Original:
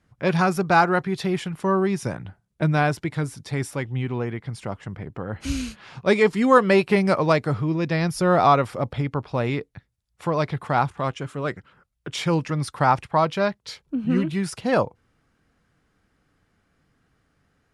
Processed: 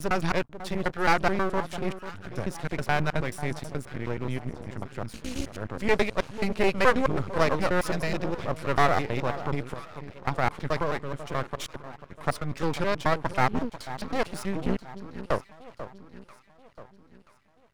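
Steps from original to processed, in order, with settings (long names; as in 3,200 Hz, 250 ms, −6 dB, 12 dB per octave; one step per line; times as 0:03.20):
slices reordered back to front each 107 ms, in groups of 6
delay that swaps between a low-pass and a high-pass 491 ms, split 1,100 Hz, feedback 64%, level −12 dB
half-wave rectification
level −1.5 dB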